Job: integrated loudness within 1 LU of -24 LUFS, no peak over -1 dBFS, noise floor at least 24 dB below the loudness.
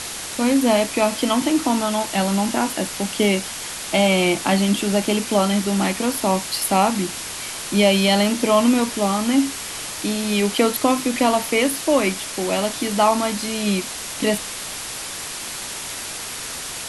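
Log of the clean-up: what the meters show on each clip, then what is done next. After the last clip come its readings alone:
noise floor -31 dBFS; noise floor target -45 dBFS; loudness -20.5 LUFS; peak level -3.0 dBFS; loudness target -24.0 LUFS
-> noise reduction 14 dB, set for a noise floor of -31 dBFS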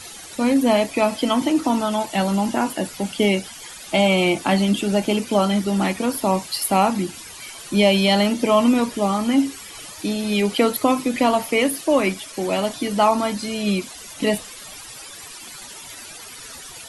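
noise floor -39 dBFS; noise floor target -45 dBFS
-> noise reduction 6 dB, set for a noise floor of -39 dBFS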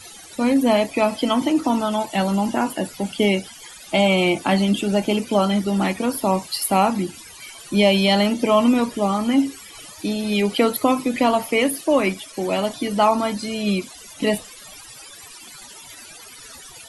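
noise floor -42 dBFS; noise floor target -45 dBFS
-> noise reduction 6 dB, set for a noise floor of -42 dBFS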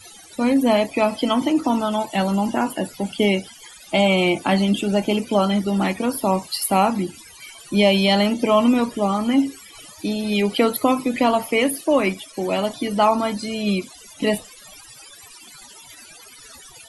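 noise floor -45 dBFS; loudness -20.5 LUFS; peak level -3.5 dBFS; loudness target -24.0 LUFS
-> trim -3.5 dB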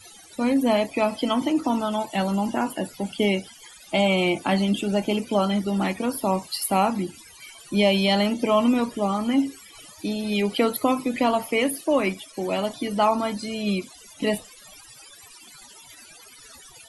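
loudness -24.0 LUFS; peak level -7.0 dBFS; noise floor -48 dBFS

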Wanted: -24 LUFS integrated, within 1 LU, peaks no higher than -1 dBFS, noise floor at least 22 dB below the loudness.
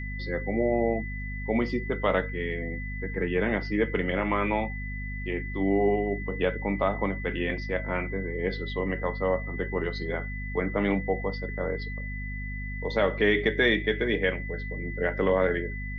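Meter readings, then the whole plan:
hum 50 Hz; highest harmonic 250 Hz; hum level -32 dBFS; steady tone 2 kHz; tone level -38 dBFS; loudness -28.5 LUFS; peak level -10.5 dBFS; loudness target -24.0 LUFS
-> de-hum 50 Hz, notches 5; band-stop 2 kHz, Q 30; trim +4.5 dB

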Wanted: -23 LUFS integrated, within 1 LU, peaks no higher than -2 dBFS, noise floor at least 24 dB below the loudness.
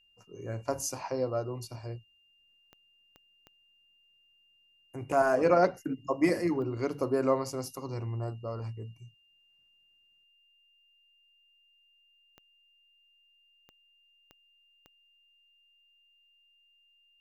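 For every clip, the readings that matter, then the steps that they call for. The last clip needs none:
clicks found 8; steady tone 2.8 kHz; tone level -64 dBFS; loudness -31.0 LUFS; peak level -10.0 dBFS; loudness target -23.0 LUFS
-> de-click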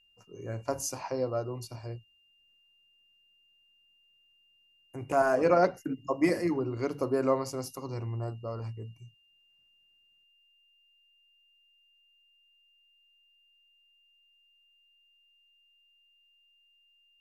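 clicks found 0; steady tone 2.8 kHz; tone level -64 dBFS
-> band-stop 2.8 kHz, Q 30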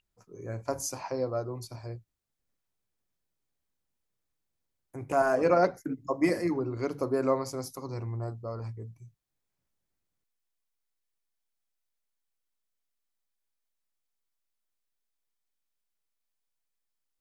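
steady tone not found; loudness -30.5 LUFS; peak level -10.0 dBFS; loudness target -23.0 LUFS
-> trim +7.5 dB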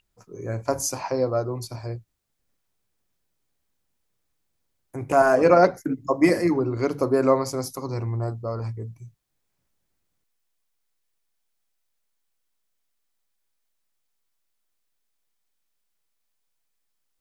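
loudness -23.0 LUFS; peak level -2.5 dBFS; noise floor -75 dBFS

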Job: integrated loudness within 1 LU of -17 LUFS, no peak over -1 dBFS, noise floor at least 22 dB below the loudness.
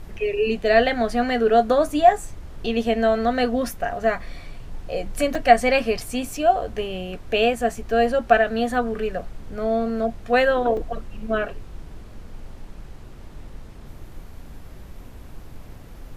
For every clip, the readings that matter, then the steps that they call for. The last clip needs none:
dropouts 3; longest dropout 3.5 ms; noise floor -41 dBFS; noise floor target -44 dBFS; loudness -21.5 LUFS; peak level -1.0 dBFS; loudness target -17.0 LUFS
-> interpolate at 5.35/5.99/10.77 s, 3.5 ms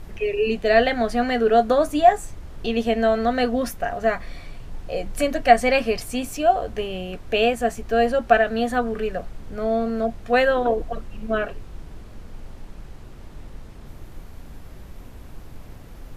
dropouts 0; noise floor -41 dBFS; noise floor target -44 dBFS
-> noise print and reduce 6 dB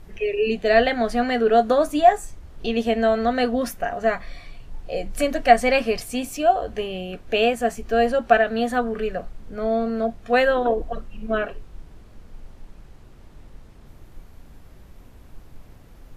noise floor -47 dBFS; loudness -21.5 LUFS; peak level -1.0 dBFS; loudness target -17.0 LUFS
-> trim +4.5 dB; peak limiter -1 dBFS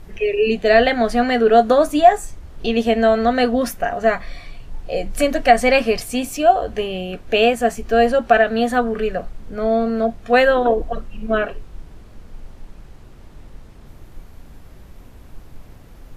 loudness -17.5 LUFS; peak level -1.0 dBFS; noise floor -42 dBFS

